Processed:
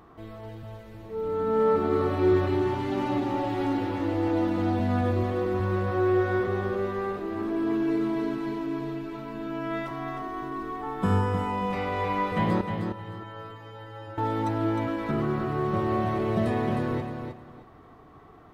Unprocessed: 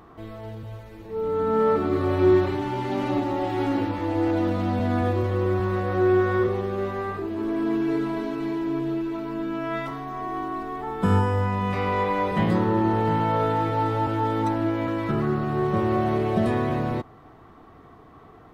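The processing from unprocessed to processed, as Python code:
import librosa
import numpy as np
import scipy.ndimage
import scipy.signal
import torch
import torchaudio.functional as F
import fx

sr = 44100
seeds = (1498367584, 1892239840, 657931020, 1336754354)

y = fx.stiff_resonator(x, sr, f0_hz=100.0, decay_s=0.64, stiffness=0.008, at=(12.61, 14.18))
y = fx.echo_feedback(y, sr, ms=310, feedback_pct=22, wet_db=-6)
y = y * 10.0 ** (-3.5 / 20.0)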